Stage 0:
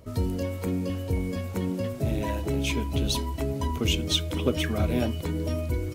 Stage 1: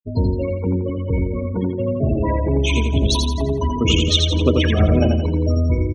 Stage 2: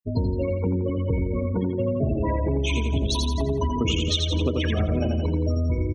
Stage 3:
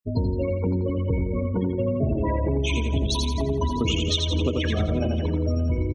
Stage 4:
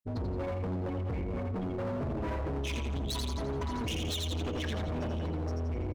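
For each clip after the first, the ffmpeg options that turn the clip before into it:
-af "afftfilt=real='re*gte(hypot(re,im),0.0355)':imag='im*gte(hypot(re,im),0.0355)':win_size=1024:overlap=0.75,aecho=1:1:85|170|255|340|425|510:0.631|0.278|0.122|0.0537|0.0236|0.0104,volume=7.5dB"
-af "acompressor=threshold=-20dB:ratio=6"
-af "aecho=1:1:567:0.141"
-af "volume=26.5dB,asoftclip=hard,volume=-26.5dB,volume=-5dB"

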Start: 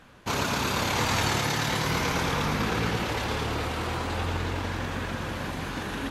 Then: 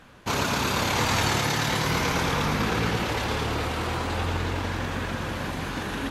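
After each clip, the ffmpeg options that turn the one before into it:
-af "acontrast=65,volume=-4.5dB"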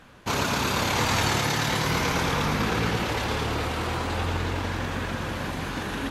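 -af anull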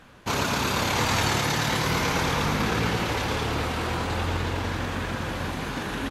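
-af "aecho=1:1:1158:0.237"

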